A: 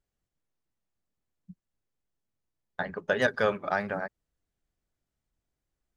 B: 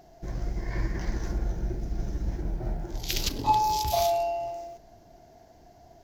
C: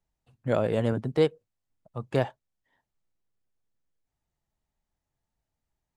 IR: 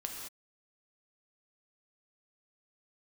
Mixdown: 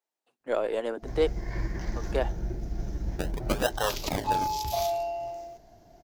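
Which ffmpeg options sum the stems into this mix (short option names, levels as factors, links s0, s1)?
-filter_complex "[0:a]highpass=600,acrusher=samples=37:mix=1:aa=0.000001:lfo=1:lforange=37:lforate=0.52,adelay=400,volume=1[s0];[1:a]dynaudnorm=f=160:g=3:m=4.47,adelay=800,volume=0.188[s1];[2:a]highpass=f=320:w=0.5412,highpass=f=320:w=1.3066,aeval=exprs='0.224*(cos(1*acos(clip(val(0)/0.224,-1,1)))-cos(1*PI/2))+0.00398*(cos(6*acos(clip(val(0)/0.224,-1,1)))-cos(6*PI/2))':c=same,volume=0.841[s2];[s0][s1][s2]amix=inputs=3:normalize=0"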